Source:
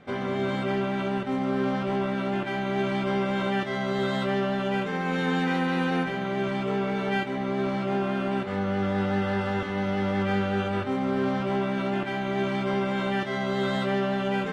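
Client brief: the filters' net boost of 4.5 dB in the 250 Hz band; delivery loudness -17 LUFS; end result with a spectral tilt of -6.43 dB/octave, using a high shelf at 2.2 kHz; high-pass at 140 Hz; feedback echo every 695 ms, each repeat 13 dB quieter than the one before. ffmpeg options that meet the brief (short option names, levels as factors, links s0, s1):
-af "highpass=140,equalizer=f=250:t=o:g=7,highshelf=f=2200:g=-4,aecho=1:1:695|1390|2085:0.224|0.0493|0.0108,volume=2.24"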